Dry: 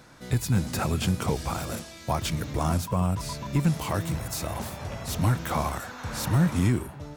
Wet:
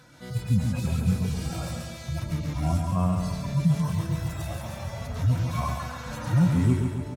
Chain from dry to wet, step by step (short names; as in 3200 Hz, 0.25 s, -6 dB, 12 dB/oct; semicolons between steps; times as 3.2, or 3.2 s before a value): median-filter separation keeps harmonic; feedback echo 0.138 s, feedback 54%, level -5.5 dB; gain +1 dB